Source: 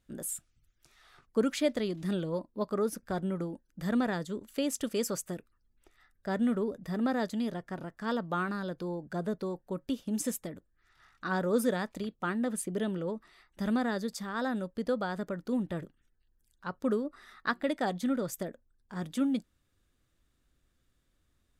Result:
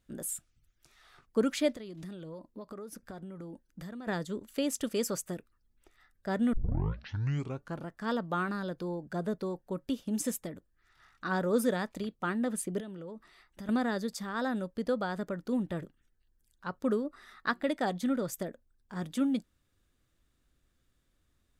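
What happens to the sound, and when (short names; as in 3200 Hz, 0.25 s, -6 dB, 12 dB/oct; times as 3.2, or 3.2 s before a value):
1.75–4.07 compressor 8:1, threshold -40 dBFS
6.53 tape start 1.33 s
12.8–13.69 compressor 4:1, threshold -41 dBFS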